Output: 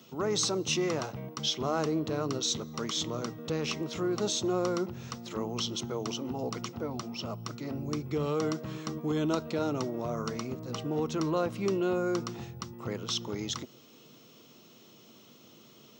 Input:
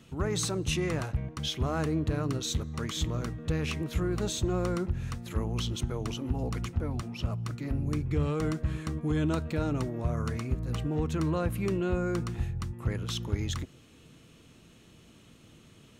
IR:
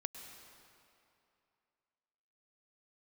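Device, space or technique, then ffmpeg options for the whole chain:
old television with a line whistle: -af "highpass=frequency=160:width=0.5412,highpass=frequency=160:width=1.3066,equalizer=frequency=170:width_type=q:width=4:gain=-8,equalizer=frequency=280:width_type=q:width=4:gain=-5,equalizer=frequency=1700:width_type=q:width=4:gain=-9,equalizer=frequency=2400:width_type=q:width=4:gain=-5,equalizer=frequency=5500:width_type=q:width=4:gain=6,lowpass=frequency=6800:width=0.5412,lowpass=frequency=6800:width=1.3066,aeval=exprs='val(0)+0.000562*sin(2*PI*15625*n/s)':channel_layout=same,volume=3.5dB"

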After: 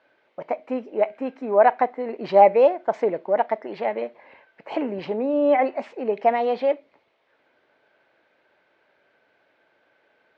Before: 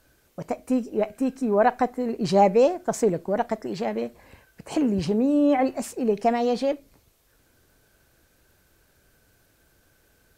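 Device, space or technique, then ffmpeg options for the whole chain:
phone earpiece: -af "highpass=350,equalizer=frequency=600:width_type=q:width=4:gain=6,equalizer=frequency=890:width_type=q:width=4:gain=6,equalizer=frequency=2100:width_type=q:width=4:gain=6,lowpass=frequency=3400:width=0.5412,lowpass=frequency=3400:width=1.3066"

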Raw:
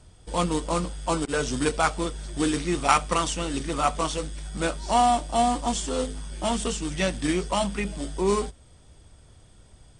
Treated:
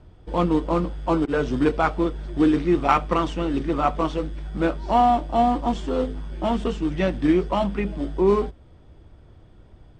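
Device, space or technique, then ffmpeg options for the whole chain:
phone in a pocket: -af "lowpass=3600,equalizer=frequency=330:width_type=o:width=0.47:gain=5,highshelf=frequency=2100:gain=-9.5,volume=3.5dB"

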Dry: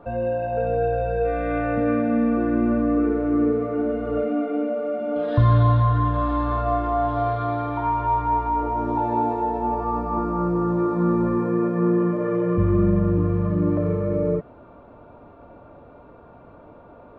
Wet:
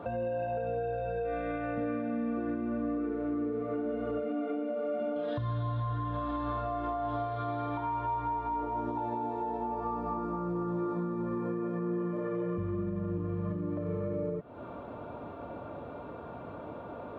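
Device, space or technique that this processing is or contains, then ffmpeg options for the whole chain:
broadcast voice chain: -af "highpass=79,deesser=0.9,acompressor=threshold=-34dB:ratio=3,equalizer=frequency=3400:width_type=o:width=0.5:gain=4.5,alimiter=level_in=5.5dB:limit=-24dB:level=0:latency=1:release=264,volume=-5.5dB,volume=4dB"

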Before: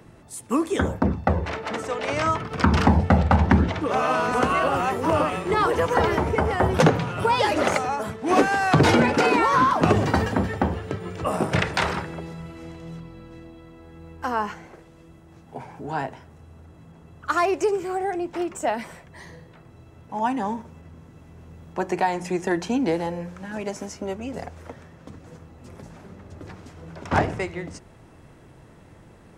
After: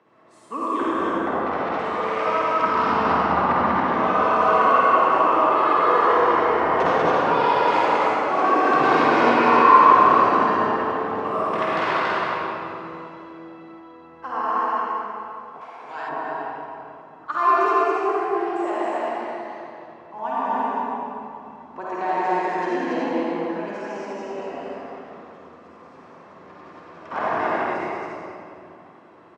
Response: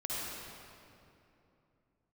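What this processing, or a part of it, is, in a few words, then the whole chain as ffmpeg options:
station announcement: -filter_complex "[0:a]highpass=330,lowpass=3600,equalizer=frequency=1100:width_type=o:width=0.41:gain=8.5,aecho=1:1:49.56|192.4|279.9:0.355|0.631|0.794[link_01];[1:a]atrim=start_sample=2205[link_02];[link_01][link_02]afir=irnorm=-1:irlink=0,asettb=1/sr,asplit=3[link_03][link_04][link_05];[link_03]atrim=end=15.614[link_06];[link_04]atrim=start=15.61:end=16.09,asetpts=PTS-STARTPTS,afade=type=in:duration=0.004:curve=qsin,afade=type=out:start_time=0.476:duration=0.004:curve=qsin,tiltshelf=frequency=970:gain=-9[link_07];[link_05]atrim=start=16.086[link_08];[link_06][link_07]acrossfade=duration=0.004:curve1=hsin:curve2=qsin[link_09];[link_09][link_08]acrossfade=duration=0.004:curve1=qsin:curve2=hsin,volume=-6dB"

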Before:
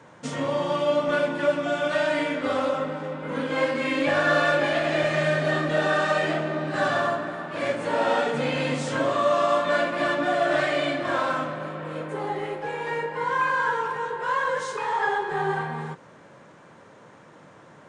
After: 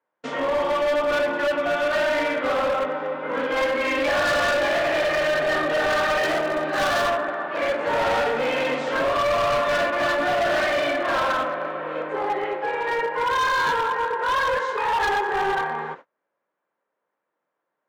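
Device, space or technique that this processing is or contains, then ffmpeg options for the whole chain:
walkie-talkie: -filter_complex "[0:a]highpass=410,lowpass=2700,asoftclip=type=hard:threshold=-25.5dB,agate=range=-35dB:threshold=-45dB:ratio=16:detection=peak,asettb=1/sr,asplit=3[link_01][link_02][link_03];[link_01]atrim=end=6.234[link_04];[link_02]atrim=start=6.23:end=7.08,asetpts=PTS-STARTPTS,afade=type=in:duration=0.004:curve=qsin,afade=type=out:start_time=0.846:duration=0.004:curve=qsin,bass=frequency=250:gain=1,treble=frequency=4000:gain=7[link_05];[link_03]atrim=start=7.076[link_06];[link_04][link_05]acrossfade=duration=0.004:curve1=hsin:curve2=qsin[link_07];[link_07][link_06]acrossfade=duration=0.004:curve1=qsin:curve2=hsin,volume=6.5dB"

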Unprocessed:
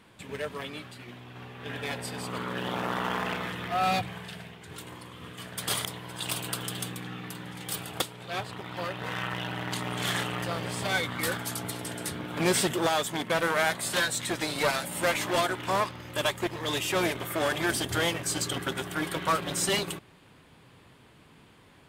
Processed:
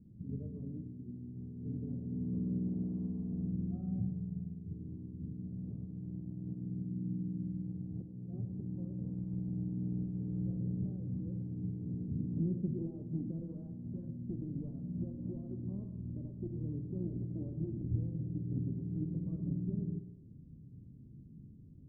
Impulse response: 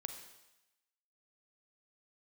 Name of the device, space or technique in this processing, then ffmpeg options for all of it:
club heard from the street: -filter_complex "[0:a]alimiter=limit=-23dB:level=0:latency=1:release=238,lowpass=frequency=240:width=0.5412,lowpass=frequency=240:width=1.3066[link_01];[1:a]atrim=start_sample=2205[link_02];[link_01][link_02]afir=irnorm=-1:irlink=0,volume=8.5dB"

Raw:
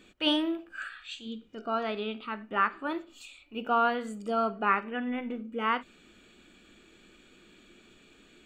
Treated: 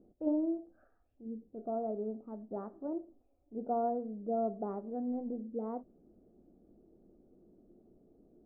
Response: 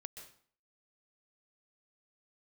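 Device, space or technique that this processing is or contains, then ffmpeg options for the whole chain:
under water: -af "lowpass=frequency=580:width=0.5412,lowpass=frequency=580:width=1.3066,equalizer=frequency=720:width_type=o:width=0.46:gain=8,volume=-3dB"

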